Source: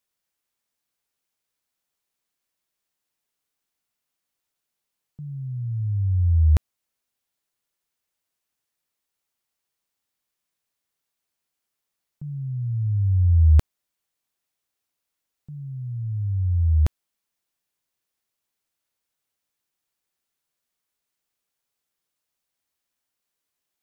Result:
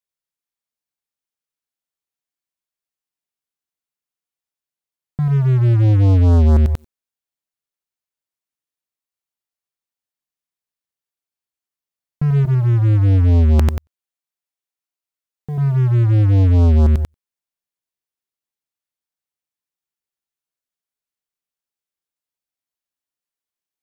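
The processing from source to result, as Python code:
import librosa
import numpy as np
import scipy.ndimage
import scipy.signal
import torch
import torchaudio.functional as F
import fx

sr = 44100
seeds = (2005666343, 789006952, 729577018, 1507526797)

y = fx.low_shelf(x, sr, hz=200.0, db=-7.0, at=(12.45, 15.58))
y = fx.echo_feedback(y, sr, ms=92, feedback_pct=21, wet_db=-7.5)
y = fx.leveller(y, sr, passes=5)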